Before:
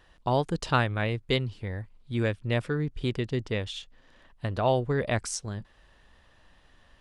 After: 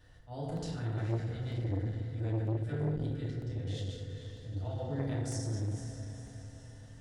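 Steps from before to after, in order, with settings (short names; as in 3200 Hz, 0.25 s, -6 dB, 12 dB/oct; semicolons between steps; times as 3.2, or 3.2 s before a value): regenerating reverse delay 0.101 s, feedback 44%, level -8 dB; bell 340 Hz -6 dB 0.72 oct; auto swell 0.401 s; compressor, threshold -37 dBFS, peak gain reduction 14.5 dB; fifteen-band EQ 100 Hz +9 dB, 1000 Hz -12 dB, 2500 Hz -8 dB; on a send: diffused feedback echo 0.486 s, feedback 51%, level -10 dB; on the sum: FDN reverb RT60 1.2 s, low-frequency decay 1.2×, high-frequency decay 0.45×, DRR -6 dB; crackling interface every 0.95 s, samples 64, repeat, from 0.57; core saturation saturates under 370 Hz; gain -4.5 dB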